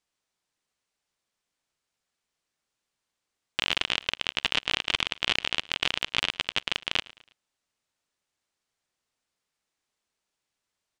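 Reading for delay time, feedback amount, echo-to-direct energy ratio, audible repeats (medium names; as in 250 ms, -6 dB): 108 ms, 44%, -20.5 dB, 2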